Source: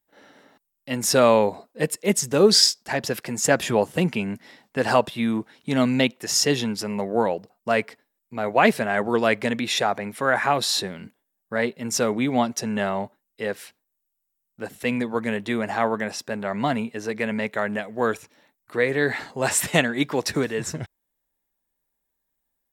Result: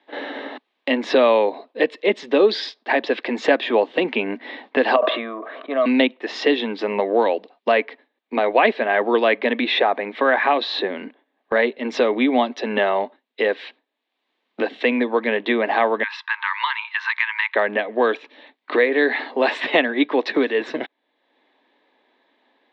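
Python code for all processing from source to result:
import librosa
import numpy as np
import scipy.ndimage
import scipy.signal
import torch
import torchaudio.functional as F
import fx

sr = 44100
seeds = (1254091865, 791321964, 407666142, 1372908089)

y = fx.chain(x, sr, fx.double_bandpass(hz=870.0, octaves=0.82),
    fx.sustainer(db_per_s=56.0), at=(4.96, 5.86))
y = fx.chain(y, sr, fx.cheby1_highpass(hz=900.0, order=8),
    fx.band_squash(depth_pct=70), at=(16.03, 17.55))
y = scipy.signal.sosfilt(scipy.signal.cheby1(4, 1.0, [260.0, 3800.0], 'bandpass', fs=sr, output='sos'), y)
y = fx.notch(y, sr, hz=1400.0, q=6.6)
y = fx.band_squash(y, sr, depth_pct=70)
y = F.gain(torch.from_numpy(y), 5.5).numpy()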